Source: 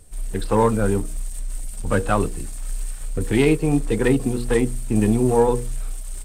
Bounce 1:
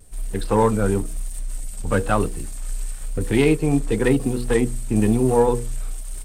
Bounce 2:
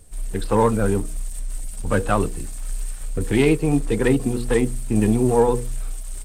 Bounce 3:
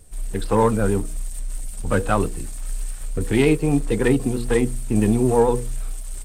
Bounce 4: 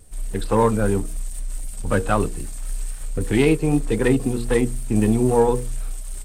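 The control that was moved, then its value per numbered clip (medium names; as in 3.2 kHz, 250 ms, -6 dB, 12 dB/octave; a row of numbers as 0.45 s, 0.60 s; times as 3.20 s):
vibrato, rate: 1 Hz, 14 Hz, 9 Hz, 3.8 Hz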